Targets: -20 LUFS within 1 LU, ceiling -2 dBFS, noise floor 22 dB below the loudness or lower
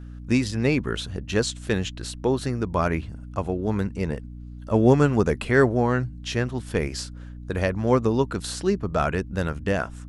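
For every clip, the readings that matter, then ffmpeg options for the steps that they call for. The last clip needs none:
hum 60 Hz; highest harmonic 300 Hz; hum level -37 dBFS; loudness -24.5 LUFS; peak level -4.5 dBFS; loudness target -20.0 LUFS
-> -af "bandreject=f=60:t=h:w=6,bandreject=f=120:t=h:w=6,bandreject=f=180:t=h:w=6,bandreject=f=240:t=h:w=6,bandreject=f=300:t=h:w=6"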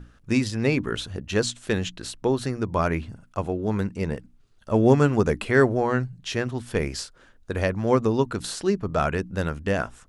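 hum not found; loudness -25.0 LUFS; peak level -4.5 dBFS; loudness target -20.0 LUFS
-> -af "volume=1.78,alimiter=limit=0.794:level=0:latency=1"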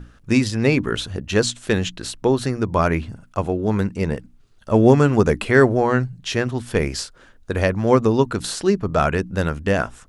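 loudness -20.0 LUFS; peak level -2.0 dBFS; noise floor -51 dBFS

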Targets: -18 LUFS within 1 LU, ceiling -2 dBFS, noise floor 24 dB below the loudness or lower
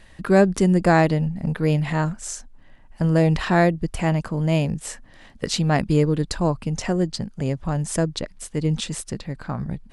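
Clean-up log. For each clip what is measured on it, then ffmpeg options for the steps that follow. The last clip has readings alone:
loudness -22.0 LUFS; peak level -4.0 dBFS; loudness target -18.0 LUFS
-> -af "volume=1.58,alimiter=limit=0.794:level=0:latency=1"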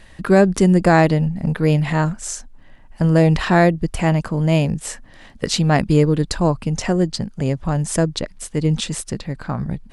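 loudness -18.5 LUFS; peak level -2.0 dBFS; noise floor -45 dBFS

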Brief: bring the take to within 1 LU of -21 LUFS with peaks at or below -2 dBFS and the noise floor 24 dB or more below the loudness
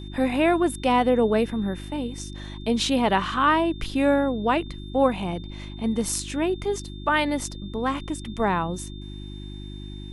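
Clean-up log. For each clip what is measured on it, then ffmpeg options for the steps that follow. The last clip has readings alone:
hum 50 Hz; highest harmonic 350 Hz; hum level -35 dBFS; steady tone 3.6 kHz; tone level -46 dBFS; loudness -24.5 LUFS; peak level -7.5 dBFS; loudness target -21.0 LUFS
-> -af "bandreject=f=50:t=h:w=4,bandreject=f=100:t=h:w=4,bandreject=f=150:t=h:w=4,bandreject=f=200:t=h:w=4,bandreject=f=250:t=h:w=4,bandreject=f=300:t=h:w=4,bandreject=f=350:t=h:w=4"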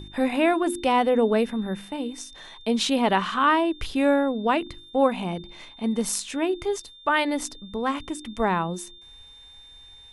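hum not found; steady tone 3.6 kHz; tone level -46 dBFS
-> -af "bandreject=f=3600:w=30"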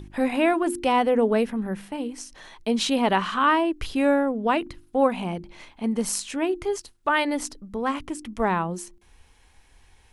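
steady tone not found; loudness -24.5 LUFS; peak level -8.0 dBFS; loudness target -21.0 LUFS
-> -af "volume=1.5"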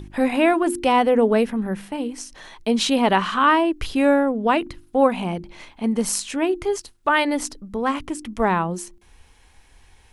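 loudness -21.0 LUFS; peak level -4.5 dBFS; noise floor -54 dBFS

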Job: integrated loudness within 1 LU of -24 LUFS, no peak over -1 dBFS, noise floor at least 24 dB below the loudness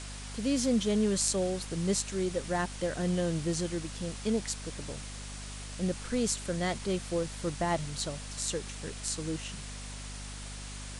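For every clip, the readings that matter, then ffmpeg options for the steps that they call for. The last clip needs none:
hum 50 Hz; highest harmonic 250 Hz; hum level -41 dBFS; noise floor -42 dBFS; noise floor target -57 dBFS; loudness -33.0 LUFS; peak level -10.5 dBFS; loudness target -24.0 LUFS
-> -af "bandreject=f=50:t=h:w=4,bandreject=f=100:t=h:w=4,bandreject=f=150:t=h:w=4,bandreject=f=200:t=h:w=4,bandreject=f=250:t=h:w=4"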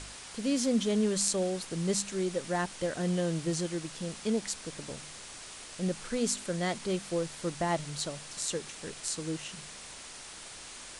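hum not found; noise floor -47 dBFS; noise floor target -57 dBFS
-> -af "afftdn=nr=10:nf=-47"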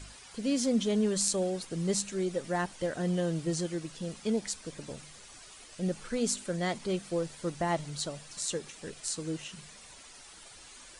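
noise floor -52 dBFS; noise floor target -57 dBFS
-> -af "afftdn=nr=6:nf=-52"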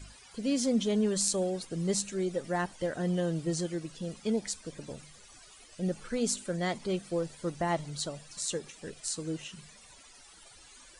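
noise floor -55 dBFS; noise floor target -57 dBFS
-> -af "afftdn=nr=6:nf=-55"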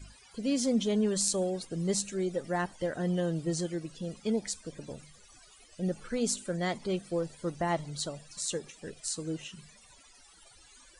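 noise floor -58 dBFS; loudness -32.5 LUFS; peak level -10.5 dBFS; loudness target -24.0 LUFS
-> -af "volume=2.66"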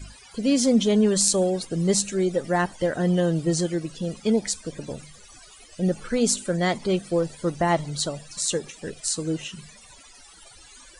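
loudness -24.0 LUFS; peak level -2.0 dBFS; noise floor -49 dBFS

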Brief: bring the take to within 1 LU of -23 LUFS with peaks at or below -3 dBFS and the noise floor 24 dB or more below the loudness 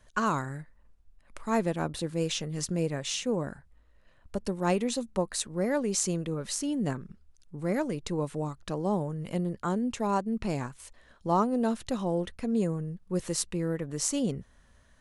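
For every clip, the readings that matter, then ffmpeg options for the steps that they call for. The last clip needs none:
loudness -31.0 LUFS; peak level -9.5 dBFS; loudness target -23.0 LUFS
-> -af "volume=2.51,alimiter=limit=0.708:level=0:latency=1"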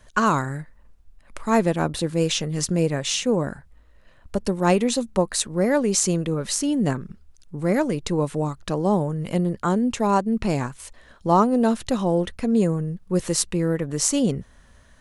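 loudness -23.0 LUFS; peak level -3.0 dBFS; noise floor -53 dBFS

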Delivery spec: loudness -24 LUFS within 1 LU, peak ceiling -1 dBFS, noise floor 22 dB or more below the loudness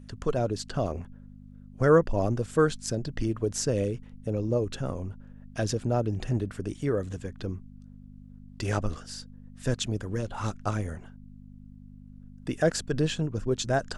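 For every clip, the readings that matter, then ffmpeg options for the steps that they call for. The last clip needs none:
hum 50 Hz; highest harmonic 250 Hz; hum level -47 dBFS; loudness -29.5 LUFS; peak level -10.0 dBFS; loudness target -24.0 LUFS
-> -af "bandreject=f=50:t=h:w=4,bandreject=f=100:t=h:w=4,bandreject=f=150:t=h:w=4,bandreject=f=200:t=h:w=4,bandreject=f=250:t=h:w=4"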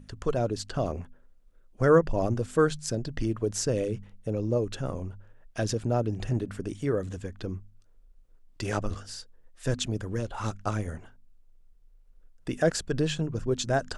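hum not found; loudness -29.5 LUFS; peak level -9.5 dBFS; loudness target -24.0 LUFS
-> -af "volume=1.88"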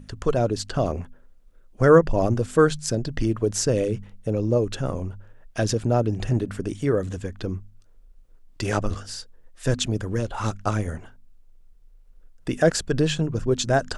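loudness -24.0 LUFS; peak level -4.0 dBFS; noise floor -53 dBFS

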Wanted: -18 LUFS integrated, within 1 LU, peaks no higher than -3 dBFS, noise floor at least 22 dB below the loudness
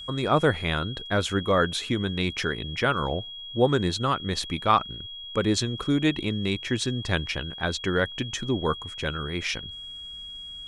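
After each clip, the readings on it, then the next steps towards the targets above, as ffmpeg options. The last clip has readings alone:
steady tone 3.3 kHz; tone level -37 dBFS; loudness -26.5 LUFS; peak level -6.5 dBFS; loudness target -18.0 LUFS
-> -af "bandreject=f=3300:w=30"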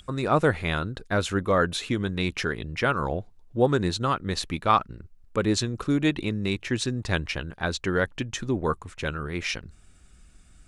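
steady tone not found; loudness -26.5 LUFS; peak level -6.5 dBFS; loudness target -18.0 LUFS
-> -af "volume=2.66,alimiter=limit=0.708:level=0:latency=1"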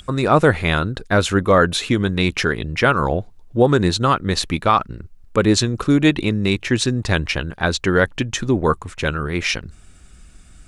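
loudness -18.5 LUFS; peak level -3.0 dBFS; noise floor -46 dBFS

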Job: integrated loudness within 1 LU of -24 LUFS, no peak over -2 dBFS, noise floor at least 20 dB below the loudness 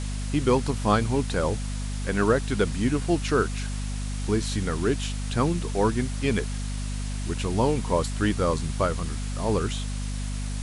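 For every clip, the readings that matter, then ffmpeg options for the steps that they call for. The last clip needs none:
hum 50 Hz; highest harmonic 250 Hz; hum level -28 dBFS; noise floor -30 dBFS; noise floor target -47 dBFS; loudness -26.5 LUFS; peak level -8.0 dBFS; loudness target -24.0 LUFS
-> -af "bandreject=f=50:t=h:w=4,bandreject=f=100:t=h:w=4,bandreject=f=150:t=h:w=4,bandreject=f=200:t=h:w=4,bandreject=f=250:t=h:w=4"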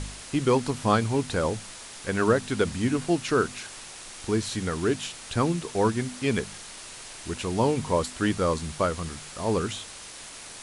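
hum not found; noise floor -43 dBFS; noise floor target -47 dBFS
-> -af "afftdn=nr=6:nf=-43"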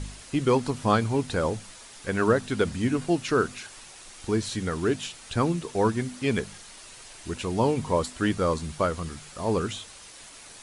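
noise floor -47 dBFS; loudness -27.0 LUFS; peak level -9.0 dBFS; loudness target -24.0 LUFS
-> -af "volume=1.41"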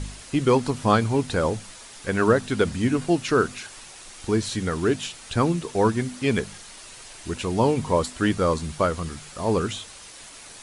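loudness -24.0 LUFS; peak level -6.0 dBFS; noise floor -44 dBFS

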